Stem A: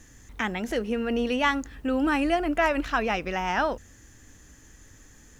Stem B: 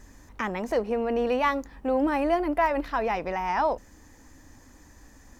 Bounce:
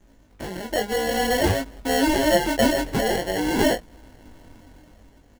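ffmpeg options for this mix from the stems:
-filter_complex "[0:a]tremolo=f=13:d=0.57,equalizer=f=290:t=o:w=0.66:g=12,aeval=exprs='(mod(7.5*val(0)+1,2)-1)/7.5':c=same,volume=0.2[s0];[1:a]dynaudnorm=f=220:g=7:m=2.99,acrusher=samples=36:mix=1:aa=0.000001,adelay=6.1,volume=0.841[s1];[s0][s1]amix=inputs=2:normalize=0,flanger=delay=18:depth=5.3:speed=0.52"

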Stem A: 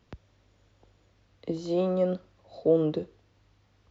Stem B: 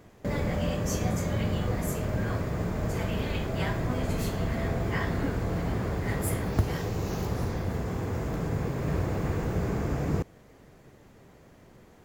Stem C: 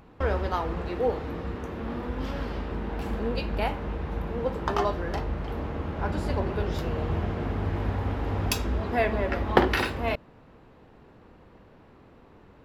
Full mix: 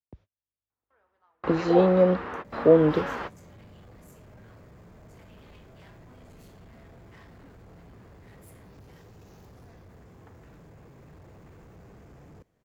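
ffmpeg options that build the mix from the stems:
-filter_complex "[0:a]agate=range=0.0112:threshold=0.00282:ratio=16:detection=peak,dynaudnorm=f=130:g=13:m=3.98,aemphasis=mode=reproduction:type=50fm,volume=0.631,asplit=2[s0][s1];[1:a]asoftclip=type=hard:threshold=0.0355,adelay=2200,volume=0.119[s2];[2:a]highpass=f=170:p=1,equalizer=f=1300:w=0.48:g=15,adelay=700,volume=0.473[s3];[s1]apad=whole_len=588444[s4];[s3][s4]sidechaingate=range=0.00631:threshold=0.00158:ratio=16:detection=peak[s5];[s0][s2][s5]amix=inputs=3:normalize=0"

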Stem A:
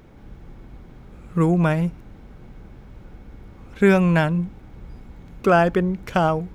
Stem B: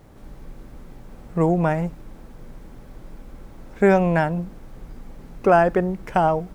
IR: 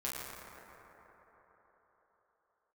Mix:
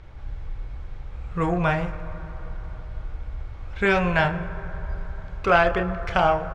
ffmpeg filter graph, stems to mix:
-filter_complex "[0:a]lowshelf=f=160:t=q:w=1.5:g=8,volume=1.19,asplit=2[s0][s1];[s1]volume=0.237[s2];[1:a]aeval=exprs='0.562*sin(PI/2*1.78*val(0)/0.562)':c=same,adelay=29,volume=0.316[s3];[2:a]atrim=start_sample=2205[s4];[s2][s4]afir=irnorm=-1:irlink=0[s5];[s0][s3][s5]amix=inputs=3:normalize=0,lowpass=4400,equalizer=f=210:t=o:w=2.4:g=-13.5"

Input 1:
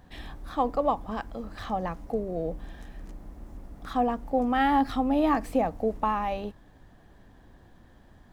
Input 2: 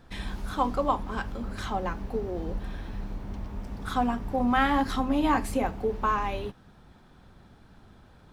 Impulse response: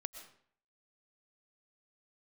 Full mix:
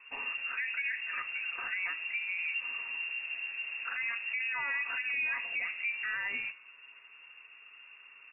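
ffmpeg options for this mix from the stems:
-filter_complex "[0:a]bandreject=f=49.17:t=h:w=4,bandreject=f=98.34:t=h:w=4,bandreject=f=147.51:t=h:w=4,bandreject=f=196.68:t=h:w=4,bandreject=f=245.85:t=h:w=4,bandreject=f=295.02:t=h:w=4,bandreject=f=344.19:t=h:w=4,bandreject=f=393.36:t=h:w=4,bandreject=f=442.53:t=h:w=4,bandreject=f=491.7:t=h:w=4,bandreject=f=540.87:t=h:w=4,bandreject=f=590.04:t=h:w=4,bandreject=f=639.21:t=h:w=4,bandreject=f=688.38:t=h:w=4,bandreject=f=737.55:t=h:w=4,bandreject=f=786.72:t=h:w=4,bandreject=f=835.89:t=h:w=4,bandreject=f=885.06:t=h:w=4,bandreject=f=934.23:t=h:w=4,volume=0.422[s0];[1:a]acompressor=threshold=0.0355:ratio=2,adelay=1.5,volume=0.75[s1];[s0][s1]amix=inputs=2:normalize=0,aecho=1:1:7.1:0.36,lowpass=f=2400:t=q:w=0.5098,lowpass=f=2400:t=q:w=0.6013,lowpass=f=2400:t=q:w=0.9,lowpass=f=2400:t=q:w=2.563,afreqshift=-2800,alimiter=level_in=1.26:limit=0.0631:level=0:latency=1:release=52,volume=0.794"

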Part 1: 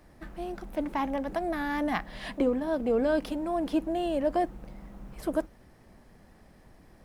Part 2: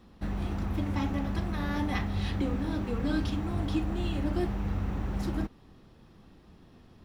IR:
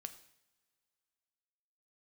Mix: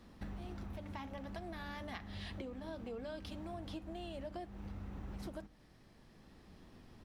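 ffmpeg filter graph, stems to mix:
-filter_complex "[0:a]equalizer=f=4000:t=o:w=1.8:g=11,volume=0.266,asplit=2[s0][s1];[1:a]adelay=0.4,volume=0.562,asplit=2[s2][s3];[s3]volume=0.299[s4];[s1]apad=whole_len=310884[s5];[s2][s5]sidechaincompress=threshold=0.00501:ratio=8:attack=16:release=1100[s6];[2:a]atrim=start_sample=2205[s7];[s4][s7]afir=irnorm=-1:irlink=0[s8];[s0][s6][s8]amix=inputs=3:normalize=0,acompressor=threshold=0.00794:ratio=6"

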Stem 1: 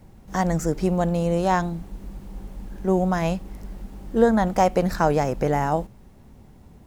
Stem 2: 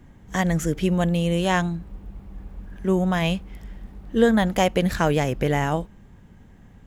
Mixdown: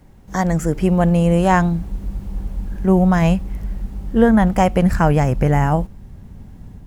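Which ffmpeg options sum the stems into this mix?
-filter_complex "[0:a]volume=1[s0];[1:a]asubboost=boost=6:cutoff=240,volume=0.531[s1];[s0][s1]amix=inputs=2:normalize=0,dynaudnorm=f=560:g=3:m=1.78"

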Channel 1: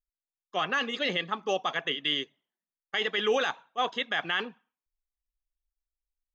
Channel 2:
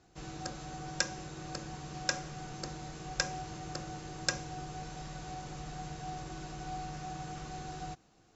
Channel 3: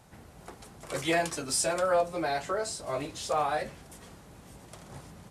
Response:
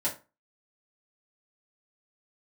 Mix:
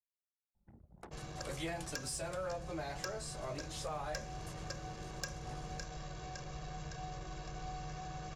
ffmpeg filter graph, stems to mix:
-filter_complex "[1:a]aecho=1:1:1.8:0.64,adelay=950,volume=0.708,asplit=2[s0][s1];[s1]volume=0.237[s2];[2:a]adelay=550,volume=0.501,asplit=2[s3][s4];[s4]volume=0.126[s5];[3:a]atrim=start_sample=2205[s6];[s5][s6]afir=irnorm=-1:irlink=0[s7];[s2]aecho=0:1:560|1120|1680|2240|2800|3360|3920|4480:1|0.56|0.314|0.176|0.0983|0.0551|0.0308|0.0173[s8];[s0][s3][s7][s8]amix=inputs=4:normalize=0,anlmdn=0.00398,asoftclip=type=tanh:threshold=0.0841,acrossover=split=160[s9][s10];[s10]acompressor=threshold=0.00794:ratio=2.5[s11];[s9][s11]amix=inputs=2:normalize=0"

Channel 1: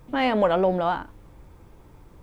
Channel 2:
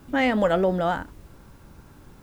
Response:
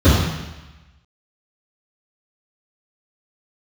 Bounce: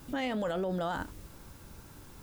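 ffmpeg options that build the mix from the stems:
-filter_complex "[0:a]volume=0.398[s0];[1:a]highshelf=f=2600:g=10.5,volume=0.596[s1];[s0][s1]amix=inputs=2:normalize=0,alimiter=level_in=1.19:limit=0.0631:level=0:latency=1:release=15,volume=0.841"

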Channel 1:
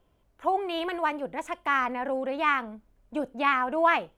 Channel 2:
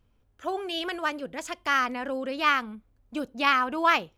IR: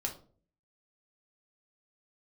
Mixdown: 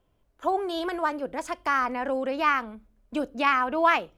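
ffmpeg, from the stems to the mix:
-filter_complex "[0:a]volume=0.708,asplit=2[s0][s1];[1:a]acrossover=split=140[s2][s3];[s3]acompressor=threshold=0.00562:ratio=1.5[s4];[s2][s4]amix=inputs=2:normalize=0,volume=1.26,asplit=2[s5][s6];[s6]volume=0.141[s7];[s1]apad=whole_len=184191[s8];[s5][s8]sidechaingate=range=0.0224:threshold=0.00178:ratio=16:detection=peak[s9];[2:a]atrim=start_sample=2205[s10];[s7][s10]afir=irnorm=-1:irlink=0[s11];[s0][s9][s11]amix=inputs=3:normalize=0"

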